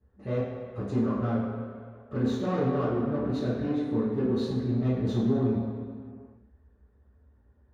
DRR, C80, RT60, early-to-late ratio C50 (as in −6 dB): −13.5 dB, 1.5 dB, 2.1 s, −1.0 dB